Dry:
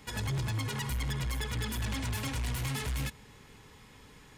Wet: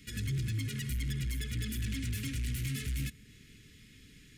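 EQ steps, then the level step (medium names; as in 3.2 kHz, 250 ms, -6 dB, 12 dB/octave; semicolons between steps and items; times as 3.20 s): dynamic bell 4 kHz, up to -4 dB, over -55 dBFS, Q 0.77; Chebyshev band-stop 290–2200 Hz, order 2; 0.0 dB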